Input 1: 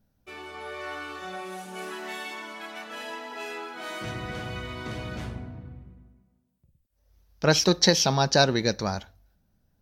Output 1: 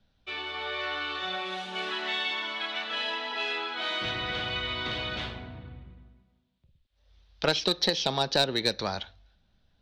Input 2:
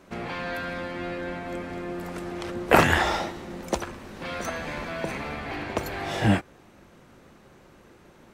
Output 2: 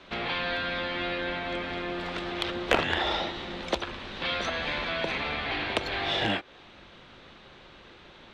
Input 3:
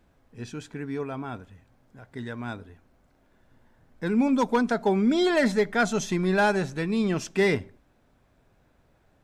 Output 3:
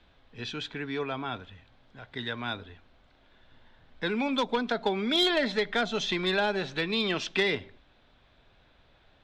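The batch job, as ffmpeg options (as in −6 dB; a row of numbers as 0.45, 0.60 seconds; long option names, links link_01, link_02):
-filter_complex "[0:a]acrossover=split=250|590[link_01][link_02][link_03];[link_01]acompressor=threshold=-39dB:ratio=4[link_04];[link_02]acompressor=threshold=-29dB:ratio=4[link_05];[link_03]acompressor=threshold=-35dB:ratio=4[link_06];[link_04][link_05][link_06]amix=inputs=3:normalize=0,lowpass=frequency=3600:width_type=q:width=3.5,asplit=2[link_07][link_08];[link_08]acrusher=bits=2:mix=0:aa=0.5,volume=-6dB[link_09];[link_07][link_09]amix=inputs=2:normalize=0,equalizer=frequency=190:width=0.4:gain=-6.5,volume=4dB"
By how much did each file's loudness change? −2.0, −1.5, −3.5 LU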